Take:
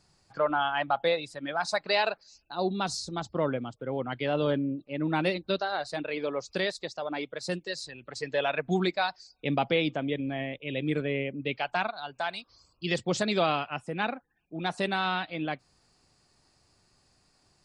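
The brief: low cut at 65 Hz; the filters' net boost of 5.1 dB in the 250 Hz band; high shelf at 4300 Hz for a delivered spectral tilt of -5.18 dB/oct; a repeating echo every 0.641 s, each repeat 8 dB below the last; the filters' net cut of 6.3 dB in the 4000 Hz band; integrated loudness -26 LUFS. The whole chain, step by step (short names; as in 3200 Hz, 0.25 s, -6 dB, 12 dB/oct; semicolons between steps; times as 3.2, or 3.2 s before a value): HPF 65 Hz; bell 250 Hz +7 dB; bell 4000 Hz -5.5 dB; high shelf 4300 Hz -4.5 dB; feedback echo 0.641 s, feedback 40%, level -8 dB; gain +2.5 dB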